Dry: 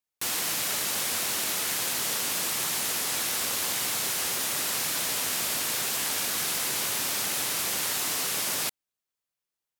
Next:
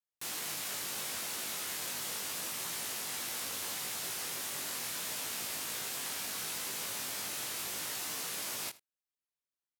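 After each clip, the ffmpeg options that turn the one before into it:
ffmpeg -i in.wav -af "flanger=delay=18:depth=2.7:speed=0.74,aecho=1:1:80:0.1,volume=-6.5dB" out.wav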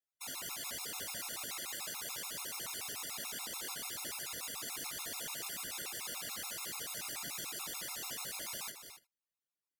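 ffmpeg -i in.wav -af "aecho=1:1:227.4|271.1:0.251|0.251,afftfilt=real='hypot(re,im)*cos(2*PI*random(0))':imag='hypot(re,im)*sin(2*PI*random(1))':win_size=512:overlap=0.75,afftfilt=real='re*gt(sin(2*PI*6.9*pts/sr)*(1-2*mod(floor(b*sr/1024/700),2)),0)':imag='im*gt(sin(2*PI*6.9*pts/sr)*(1-2*mod(floor(b*sr/1024/700),2)),0)':win_size=1024:overlap=0.75,volume=5dB" out.wav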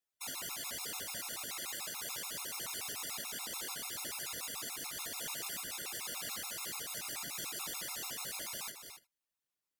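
ffmpeg -i in.wav -af "alimiter=level_in=8.5dB:limit=-24dB:level=0:latency=1:release=261,volume=-8.5dB,volume=2dB" out.wav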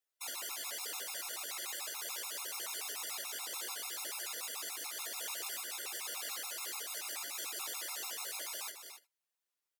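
ffmpeg -i in.wav -filter_complex "[0:a]highpass=frequency=360:width=0.5412,highpass=frequency=360:width=1.3066,asplit=2[link_01][link_02];[link_02]adelay=14,volume=-14dB[link_03];[link_01][link_03]amix=inputs=2:normalize=0" out.wav

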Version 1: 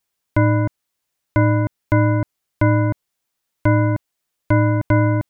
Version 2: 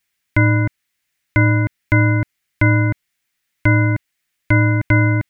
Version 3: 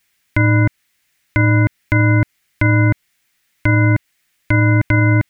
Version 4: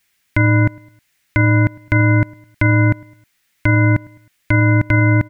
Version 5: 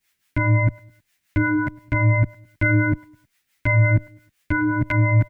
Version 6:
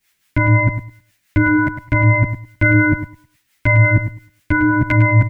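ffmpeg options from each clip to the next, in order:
ffmpeg -i in.wav -af "equalizer=frequency=500:width_type=o:width=1:gain=-7,equalizer=frequency=1000:width_type=o:width=1:gain=-6,equalizer=frequency=2000:width_type=o:width=1:gain=10,volume=2.5dB" out.wav
ffmpeg -i in.wav -af "alimiter=limit=-13dB:level=0:latency=1:release=151,volume=8.5dB" out.wav
ffmpeg -i in.wav -af "aecho=1:1:105|210|315:0.0631|0.0284|0.0128" out.wav
ffmpeg -i in.wav -filter_complex "[0:a]acrossover=split=500[link_01][link_02];[link_01]aeval=exprs='val(0)*(1-0.7/2+0.7/2*cos(2*PI*5.8*n/s))':channel_layout=same[link_03];[link_02]aeval=exprs='val(0)*(1-0.7/2-0.7/2*cos(2*PI*5.8*n/s))':channel_layout=same[link_04];[link_03][link_04]amix=inputs=2:normalize=0,asplit=2[link_05][link_06];[link_06]adelay=10.4,afreqshift=-0.66[link_07];[link_05][link_07]amix=inputs=2:normalize=1,volume=1.5dB" out.wav
ffmpeg -i in.wav -af "aecho=1:1:104|208:0.316|0.0538,volume=5.5dB" out.wav

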